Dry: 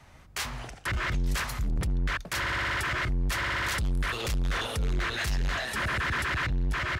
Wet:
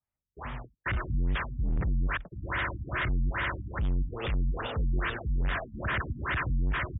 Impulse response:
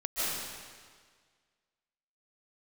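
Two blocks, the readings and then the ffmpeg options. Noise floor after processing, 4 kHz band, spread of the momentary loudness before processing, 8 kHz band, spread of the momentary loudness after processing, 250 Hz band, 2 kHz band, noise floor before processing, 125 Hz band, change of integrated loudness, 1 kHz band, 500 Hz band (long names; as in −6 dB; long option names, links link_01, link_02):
below −85 dBFS, −9.0 dB, 4 LU, below −40 dB, 4 LU, 0.0 dB, −4.0 dB, −52 dBFS, 0.0 dB, −2.0 dB, −3.0 dB, −1.0 dB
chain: -af "agate=range=-40dB:threshold=-37dB:ratio=16:detection=peak,afftfilt=real='re*lt(b*sr/1024,270*pow(3800/270,0.5+0.5*sin(2*PI*2.4*pts/sr)))':imag='im*lt(b*sr/1024,270*pow(3800/270,0.5+0.5*sin(2*PI*2.4*pts/sr)))':win_size=1024:overlap=0.75"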